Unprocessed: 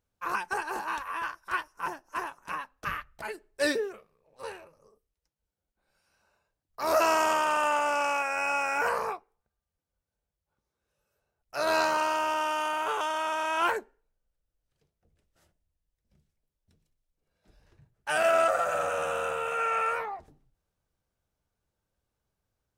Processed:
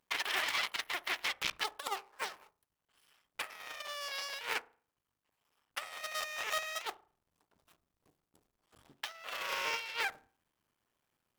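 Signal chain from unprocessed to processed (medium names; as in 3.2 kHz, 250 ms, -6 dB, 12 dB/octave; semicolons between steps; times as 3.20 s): cycle switcher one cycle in 2, muted; bass shelf 140 Hz -11.5 dB; compressor with a negative ratio -37 dBFS, ratio -0.5; on a send: feedback echo behind a low-pass 72 ms, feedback 57%, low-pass 500 Hz, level -15 dB; on the sum: speed mistake 7.5 ips tape played at 15 ips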